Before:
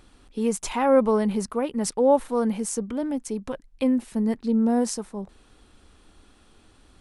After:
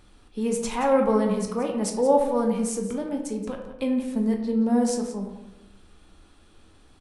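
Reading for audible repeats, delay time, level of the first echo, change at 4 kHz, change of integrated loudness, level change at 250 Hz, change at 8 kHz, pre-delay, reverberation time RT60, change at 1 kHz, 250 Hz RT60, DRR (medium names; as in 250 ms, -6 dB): 1, 176 ms, -13.0 dB, -1.0 dB, -0.5 dB, -0.5 dB, -1.5 dB, 8 ms, 0.95 s, 0.0 dB, 1.1 s, 2.0 dB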